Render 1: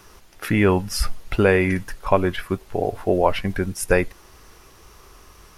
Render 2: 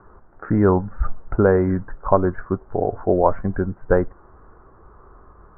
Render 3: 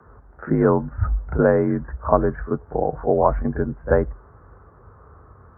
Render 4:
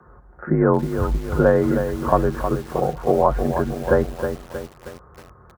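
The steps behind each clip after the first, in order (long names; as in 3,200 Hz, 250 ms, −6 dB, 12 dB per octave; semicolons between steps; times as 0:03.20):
Butterworth low-pass 1,500 Hz 48 dB per octave; level +1.5 dB
backwards echo 36 ms −12.5 dB; frequency shifter +43 Hz; level −1 dB
comb filter 5.6 ms, depth 37%; feedback echo at a low word length 316 ms, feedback 55%, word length 6 bits, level −7.5 dB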